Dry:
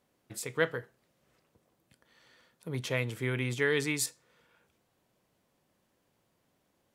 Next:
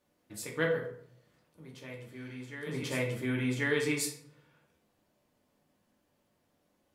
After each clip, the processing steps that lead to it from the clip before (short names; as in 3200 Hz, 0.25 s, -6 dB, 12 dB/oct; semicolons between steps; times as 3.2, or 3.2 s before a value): reverse echo 1.088 s -12.5 dB; reverb RT60 0.65 s, pre-delay 3 ms, DRR -2 dB; gain -5 dB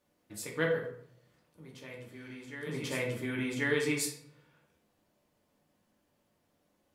de-hum 126.5 Hz, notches 38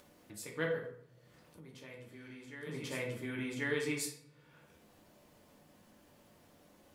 upward compressor, threshold -43 dBFS; gain -5 dB